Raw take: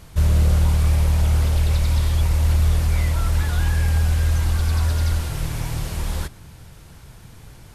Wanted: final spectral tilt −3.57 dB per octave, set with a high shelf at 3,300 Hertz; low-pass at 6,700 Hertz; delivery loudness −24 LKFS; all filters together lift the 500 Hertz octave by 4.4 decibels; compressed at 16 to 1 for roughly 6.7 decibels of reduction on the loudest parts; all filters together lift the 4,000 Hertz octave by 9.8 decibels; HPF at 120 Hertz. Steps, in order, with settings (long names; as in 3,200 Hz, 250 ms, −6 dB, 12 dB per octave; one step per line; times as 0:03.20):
high-pass filter 120 Hz
low-pass filter 6,700 Hz
parametric band 500 Hz +5 dB
high-shelf EQ 3,300 Hz +8.5 dB
parametric band 4,000 Hz +6.5 dB
downward compressor 16 to 1, threshold −26 dBFS
level +6 dB